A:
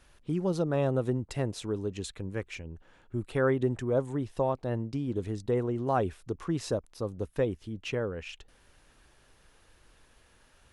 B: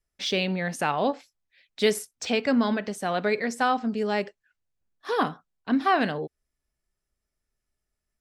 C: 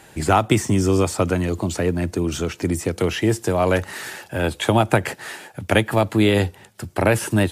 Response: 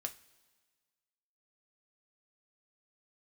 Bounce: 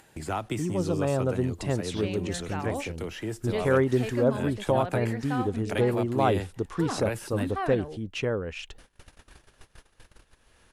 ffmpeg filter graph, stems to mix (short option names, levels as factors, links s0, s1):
-filter_complex "[0:a]dynaudnorm=f=250:g=9:m=1.5,adelay=300,volume=1[s0];[1:a]highshelf=f=3300:g=-10.5,adelay=1700,volume=0.355[s1];[2:a]volume=0.188[s2];[s0][s1][s2]amix=inputs=3:normalize=0,agate=range=0.0316:threshold=0.00224:ratio=16:detection=peak,acompressor=mode=upward:threshold=0.0224:ratio=2.5"